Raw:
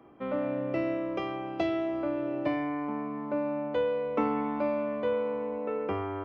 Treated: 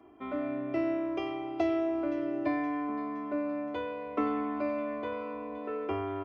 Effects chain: comb 2.9 ms, depth 90%; thin delay 0.519 s, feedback 53%, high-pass 2000 Hz, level -12 dB; gain -4.5 dB

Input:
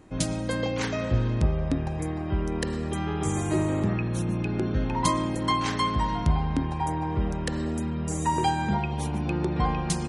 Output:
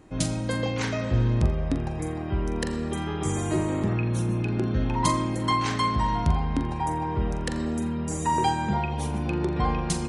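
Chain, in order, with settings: flutter echo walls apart 7.3 m, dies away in 0.27 s

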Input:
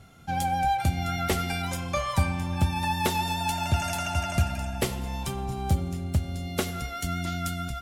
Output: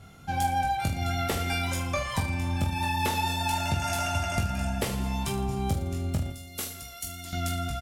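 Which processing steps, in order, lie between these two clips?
6.3–7.33 pre-emphasis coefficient 0.8; compressor, threshold -25 dBFS, peak gain reduction 7.5 dB; on a send: reverse bouncing-ball echo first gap 20 ms, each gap 1.25×, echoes 5

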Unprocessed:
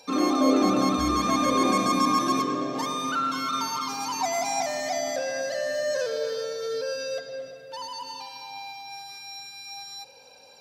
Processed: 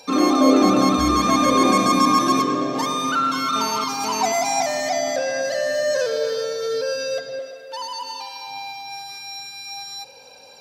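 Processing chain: 3.56–4.32 GSM buzz -36 dBFS; 4.89–5.45 high shelf 11000 Hz -8.5 dB; 7.39–8.47 HPF 350 Hz 12 dB/oct; gain +6 dB

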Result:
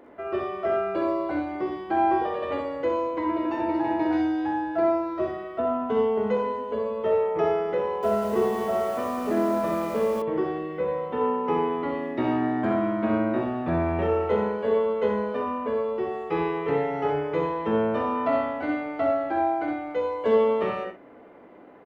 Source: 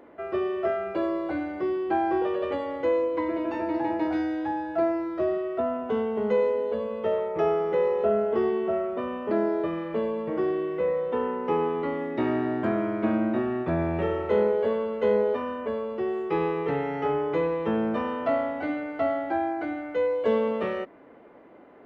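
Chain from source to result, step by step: tapped delay 47/63/83/116 ms -8.5/-6/-9/-14.5 dB; 7.83–10.22 lo-fi delay 0.197 s, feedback 55%, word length 7-bit, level -5 dB

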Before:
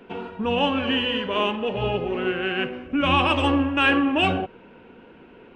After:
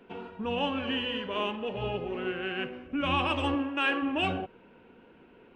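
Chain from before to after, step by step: 3.54–4.01 HPF 150 Hz -> 350 Hz 12 dB/oct; gain -8 dB

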